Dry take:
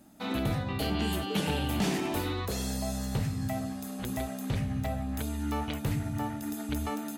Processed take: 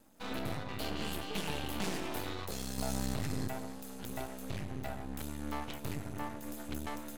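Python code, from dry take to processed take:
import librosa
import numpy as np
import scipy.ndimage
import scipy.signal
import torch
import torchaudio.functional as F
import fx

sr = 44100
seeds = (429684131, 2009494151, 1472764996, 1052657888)

y = fx.low_shelf(x, sr, hz=240.0, db=-5.0)
y = np.maximum(y, 0.0)
y = fx.env_flatten(y, sr, amount_pct=100, at=(2.78, 3.48))
y = y * librosa.db_to_amplitude(-1.5)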